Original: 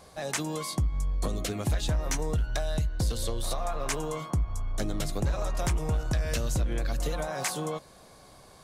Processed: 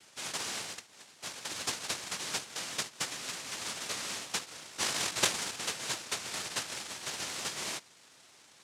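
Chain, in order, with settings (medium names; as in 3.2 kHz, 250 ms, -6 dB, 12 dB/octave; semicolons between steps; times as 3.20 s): 0.64–1.52 s: high-pass 350 Hz 24 dB/octave; 4.78–5.55 s: bass shelf 460 Hz +8 dB; noise-vocoded speech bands 1; trim -5 dB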